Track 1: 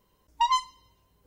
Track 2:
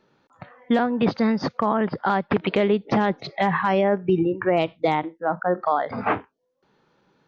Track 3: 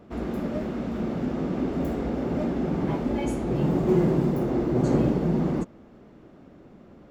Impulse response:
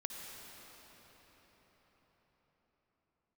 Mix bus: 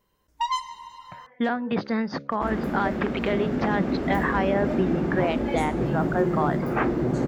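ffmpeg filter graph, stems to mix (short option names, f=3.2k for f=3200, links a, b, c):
-filter_complex "[0:a]volume=-6.5dB,asplit=2[a][b];[b]volume=-3.5dB[c];[1:a]bandreject=f=69.48:t=h:w=4,bandreject=f=138.96:t=h:w=4,bandreject=f=208.44:t=h:w=4,bandreject=f=277.92:t=h:w=4,bandreject=f=347.4:t=h:w=4,bandreject=f=416.88:t=h:w=4,bandreject=f=486.36:t=h:w=4,bandreject=f=555.84:t=h:w=4,bandreject=f=625.32:t=h:w=4,adelay=700,volume=-5dB[d];[2:a]alimiter=limit=-16.5dB:level=0:latency=1:release=392,adelay=2300,volume=1dB[e];[3:a]atrim=start_sample=2205[f];[c][f]afir=irnorm=-1:irlink=0[g];[a][d][e][g]amix=inputs=4:normalize=0,equalizer=f=1.7k:w=2.1:g=5"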